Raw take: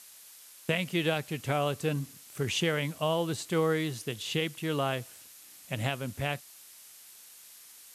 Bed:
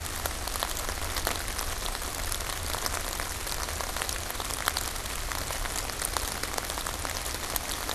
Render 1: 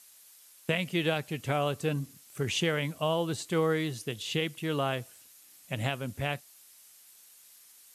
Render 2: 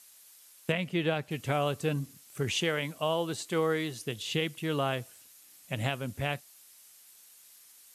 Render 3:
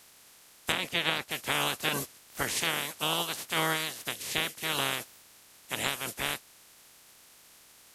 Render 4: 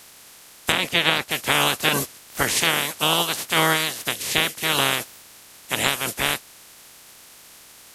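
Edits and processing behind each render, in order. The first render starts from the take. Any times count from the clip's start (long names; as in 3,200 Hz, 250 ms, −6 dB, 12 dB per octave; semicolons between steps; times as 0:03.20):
broadband denoise 6 dB, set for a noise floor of −53 dBFS
0:00.72–0:01.31: high-shelf EQ 4,300 Hz −10.5 dB; 0:02.52–0:04.03: high-pass filter 210 Hz 6 dB per octave
ceiling on every frequency bin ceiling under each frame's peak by 30 dB
level +9.5 dB; brickwall limiter −2 dBFS, peak gain reduction 2.5 dB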